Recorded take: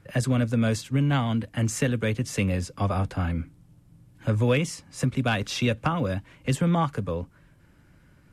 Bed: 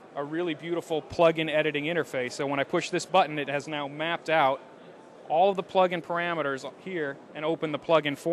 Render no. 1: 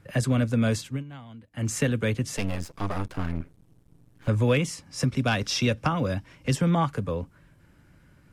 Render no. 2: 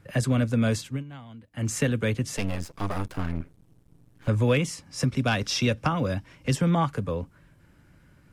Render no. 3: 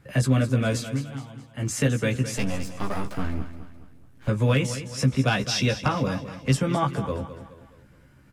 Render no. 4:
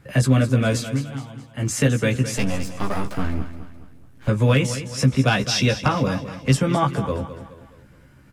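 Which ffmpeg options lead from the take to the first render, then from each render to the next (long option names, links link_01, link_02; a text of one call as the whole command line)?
ffmpeg -i in.wav -filter_complex "[0:a]asettb=1/sr,asplit=3[link_01][link_02][link_03];[link_01]atrim=end=2.374[link_04];[link_02]atrim=start=2.37:end=4.28,asetpts=PTS-STARTPTS,afade=type=in:duration=0.004:curve=qsin,afade=type=out:start_time=1.906:duration=0.004:curve=qsin,aeval=exprs='max(val(0),0)':channel_layout=same[link_05];[link_03]atrim=start=4.276[link_06];[link_04][link_05]acrossfade=duration=0.004:curve1=hsin:curve2=qsin[link_07];[link_07][link_06]acrossfade=duration=0.004:curve1=qsin:curve2=hsin,asettb=1/sr,asplit=3[link_08][link_09][link_10];[link_08]atrim=end=4.864[link_11];[link_09]atrim=start=4.86:end=6.71,asetpts=PTS-STARTPTS,afade=type=in:duration=0.004:curve=qsin,afade=type=out:start_time=1.846:duration=0.004:curve=qsin,equalizer=frequency=5400:width_type=o:width=0.24:gain=10.5[link_12];[link_10]atrim=start=6.706[link_13];[link_11][link_12]acrossfade=duration=0.004:curve1=hsin:curve2=qsin[link_14];[link_14][link_13]acrossfade=duration=0.004:curve1=qsin:curve2=hsin,asplit=3[link_15][link_16][link_17];[link_15]atrim=end=1.04,asetpts=PTS-STARTPTS,afade=type=out:start_time=0.84:duration=0.2:silence=0.112202[link_18];[link_16]atrim=start=1.04:end=1.51,asetpts=PTS-STARTPTS,volume=-19dB[link_19];[link_17]atrim=start=1.51,asetpts=PTS-STARTPTS,afade=type=in:duration=0.2:silence=0.112202[link_20];[link_18][link_19][link_20]concat=n=3:v=0:a=1" out.wav
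ffmpeg -i in.wav -filter_complex "[0:a]asettb=1/sr,asplit=3[link_01][link_02][link_03];[link_01]atrim=end=2.794[link_04];[link_02]atrim=start=2.79:end=3.21,asetpts=PTS-STARTPTS,afade=type=in:duration=0.004:curve=qsin,afade=type=out:start_time=0.416:duration=0.004:curve=qsin,highshelf=frequency=9800:gain=7.5[link_05];[link_03]atrim=start=3.206[link_06];[link_04][link_05]acrossfade=duration=0.004:curve1=hsin:curve2=qsin[link_07];[link_07][link_06]acrossfade=duration=0.004:curve1=qsin:curve2=hsin" out.wav
ffmpeg -i in.wav -filter_complex "[0:a]asplit=2[link_01][link_02];[link_02]adelay=15,volume=-3.5dB[link_03];[link_01][link_03]amix=inputs=2:normalize=0,aecho=1:1:211|422|633|844:0.251|0.108|0.0464|0.02" out.wav
ffmpeg -i in.wav -af "volume=4dB" out.wav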